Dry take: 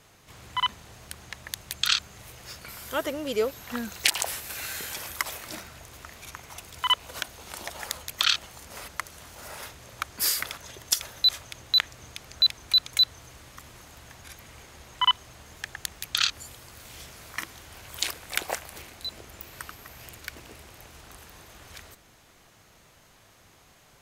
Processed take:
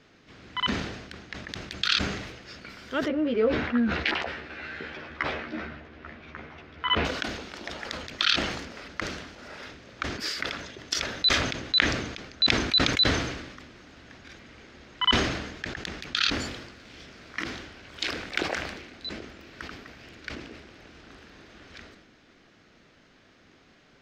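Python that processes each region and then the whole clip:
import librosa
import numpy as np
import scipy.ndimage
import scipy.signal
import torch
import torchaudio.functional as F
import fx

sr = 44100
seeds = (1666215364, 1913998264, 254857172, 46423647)

y = fx.chain(x, sr, fx.lowpass(hz=2300.0, slope=12),
    fx.doubler(ms=13.0, db=-3), at=(3.08, 7.05))
y = fx.curve_eq(y, sr, hz=(120.0, 260.0, 970.0, 1500.0, 5200.0, 11000.0), db=(0, 12, -2, 6, 1, -26))
y = fx.sustainer(y, sr, db_per_s=52.0)
y = F.gain(torch.from_numpy(y), -4.5).numpy()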